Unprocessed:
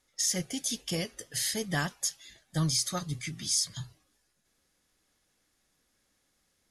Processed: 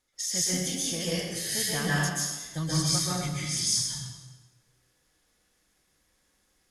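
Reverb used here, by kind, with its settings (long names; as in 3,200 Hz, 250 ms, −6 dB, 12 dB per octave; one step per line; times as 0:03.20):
dense smooth reverb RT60 1.2 s, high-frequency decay 0.85×, pre-delay 115 ms, DRR −7.5 dB
level −4 dB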